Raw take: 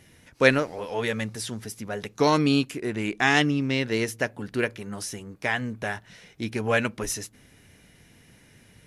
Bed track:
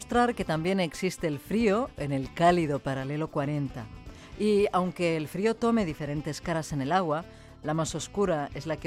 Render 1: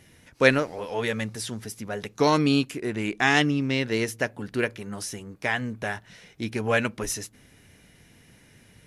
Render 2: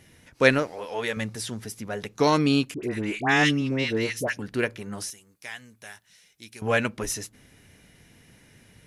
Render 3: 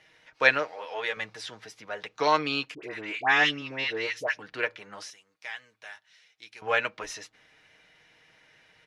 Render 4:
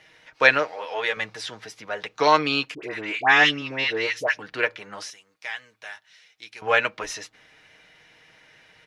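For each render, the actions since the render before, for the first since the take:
no audible change
0.67–1.17 s: bass shelf 220 Hz -10.5 dB; 2.74–4.39 s: phase dispersion highs, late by 92 ms, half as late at 1.1 kHz; 5.10–6.62 s: pre-emphasis filter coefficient 0.9
three-band isolator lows -19 dB, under 520 Hz, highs -24 dB, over 5.1 kHz; comb 6.4 ms, depth 41%
trim +5.5 dB; peak limiter -1 dBFS, peak gain reduction 2 dB

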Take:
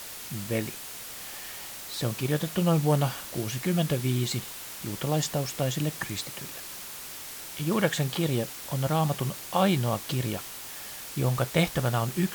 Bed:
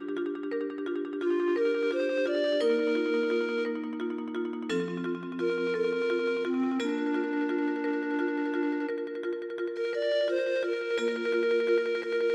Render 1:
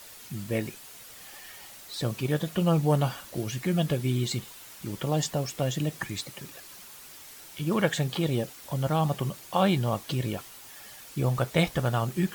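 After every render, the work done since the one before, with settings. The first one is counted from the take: noise reduction 8 dB, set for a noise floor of -41 dBFS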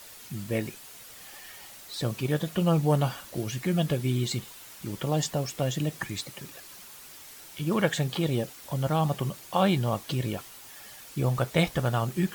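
no audible change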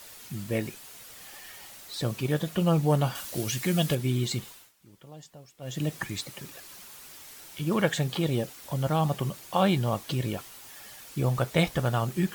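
3.15–3.95 s: treble shelf 2.5 kHz +8.5 dB; 4.47–5.85 s: dip -20 dB, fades 0.25 s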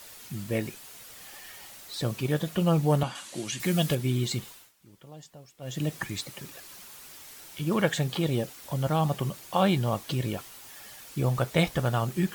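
3.03–3.60 s: cabinet simulation 200–9200 Hz, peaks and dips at 450 Hz -8 dB, 660 Hz -4 dB, 1.4 kHz -3 dB, 5.3 kHz -5 dB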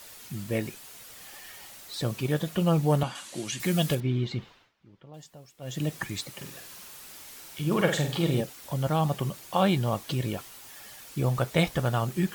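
4.00–5.14 s: distance through air 240 m; 6.32–8.41 s: flutter echo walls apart 8.1 m, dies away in 0.44 s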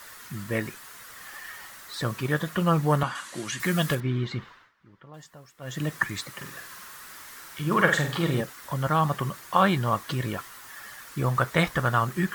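high-order bell 1.4 kHz +10 dB 1.2 oct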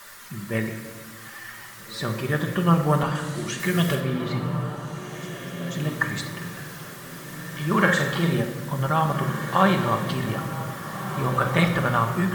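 on a send: echo that smears into a reverb 1721 ms, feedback 40%, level -9.5 dB; on the sum: simulated room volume 1700 m³, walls mixed, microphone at 1.2 m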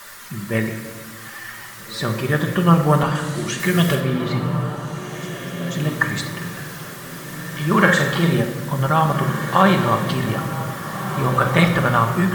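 trim +5 dB; peak limiter -1 dBFS, peak gain reduction 2 dB

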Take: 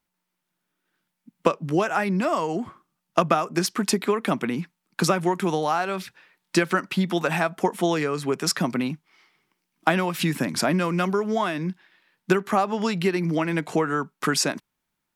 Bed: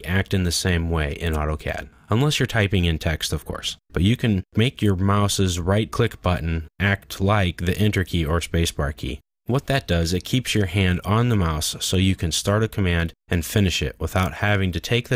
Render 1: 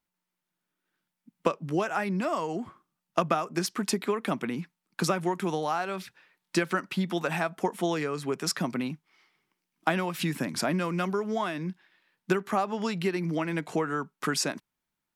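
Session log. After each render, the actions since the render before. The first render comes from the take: trim -5.5 dB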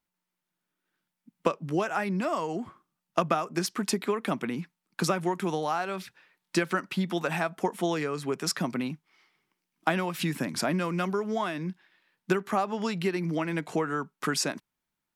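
no audible change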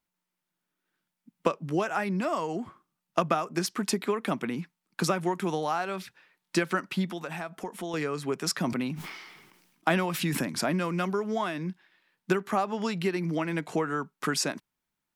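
7.06–7.94 s: compression 2:1, threshold -37 dBFS; 8.57–10.41 s: decay stretcher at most 44 dB/s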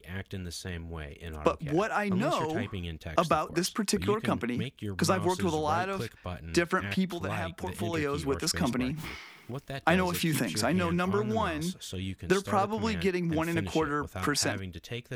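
add bed -17 dB

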